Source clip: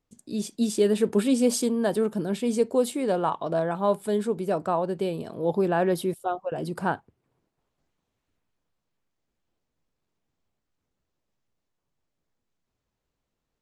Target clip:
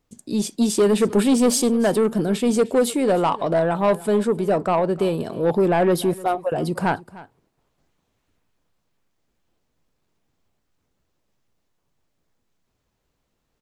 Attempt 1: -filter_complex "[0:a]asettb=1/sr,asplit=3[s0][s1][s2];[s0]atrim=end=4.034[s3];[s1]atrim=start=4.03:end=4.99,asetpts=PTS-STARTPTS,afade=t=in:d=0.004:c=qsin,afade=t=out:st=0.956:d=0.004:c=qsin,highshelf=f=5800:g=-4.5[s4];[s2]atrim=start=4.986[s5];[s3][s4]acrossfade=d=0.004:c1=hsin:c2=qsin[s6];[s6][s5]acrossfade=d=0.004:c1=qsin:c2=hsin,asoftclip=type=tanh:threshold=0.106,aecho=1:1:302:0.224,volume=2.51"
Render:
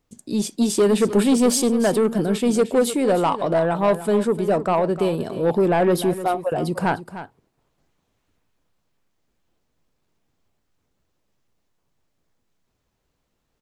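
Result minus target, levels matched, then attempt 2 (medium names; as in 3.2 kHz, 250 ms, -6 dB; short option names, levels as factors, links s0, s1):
echo-to-direct +6.5 dB
-filter_complex "[0:a]asettb=1/sr,asplit=3[s0][s1][s2];[s0]atrim=end=4.034[s3];[s1]atrim=start=4.03:end=4.99,asetpts=PTS-STARTPTS,afade=t=in:d=0.004:c=qsin,afade=t=out:st=0.956:d=0.004:c=qsin,highshelf=f=5800:g=-4.5[s4];[s2]atrim=start=4.986[s5];[s3][s4]acrossfade=d=0.004:c1=hsin:c2=qsin[s6];[s6][s5]acrossfade=d=0.004:c1=qsin:c2=hsin,asoftclip=type=tanh:threshold=0.106,aecho=1:1:302:0.106,volume=2.51"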